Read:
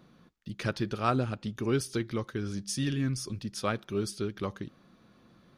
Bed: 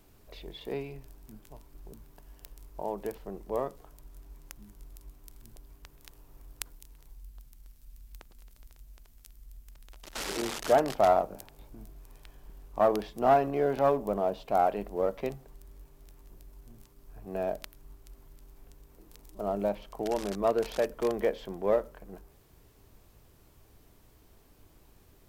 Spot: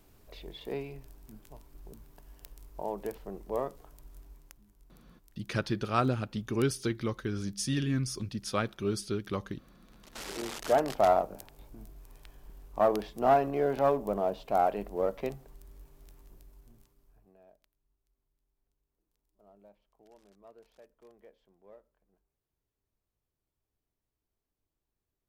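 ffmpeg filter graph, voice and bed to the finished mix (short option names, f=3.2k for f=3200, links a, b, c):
-filter_complex "[0:a]adelay=4900,volume=0dB[a];[1:a]volume=9.5dB,afade=t=out:st=4.19:d=0.43:silence=0.298538,afade=t=in:st=9.78:d=1.22:silence=0.298538,afade=t=out:st=16.11:d=1.25:silence=0.0421697[b];[a][b]amix=inputs=2:normalize=0"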